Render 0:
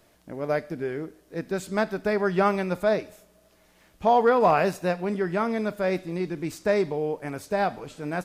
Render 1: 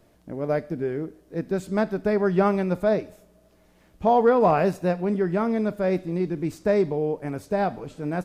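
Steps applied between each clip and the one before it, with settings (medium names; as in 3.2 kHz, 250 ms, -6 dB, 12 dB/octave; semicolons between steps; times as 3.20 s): tilt shelf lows +5 dB, about 740 Hz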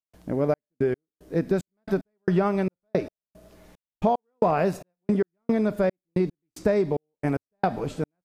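trance gate ".xxx..x." 112 bpm -60 dB; compression 6:1, threshold -26 dBFS, peak gain reduction 11 dB; trim +7 dB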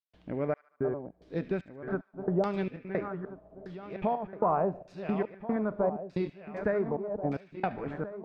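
backward echo that repeats 691 ms, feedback 56%, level -9 dB; feedback echo behind a high-pass 74 ms, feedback 62%, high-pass 2.6 kHz, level -11 dB; LFO low-pass saw down 0.82 Hz 620–4500 Hz; trim -8 dB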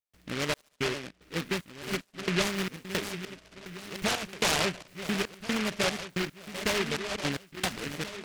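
delay time shaken by noise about 2 kHz, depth 0.31 ms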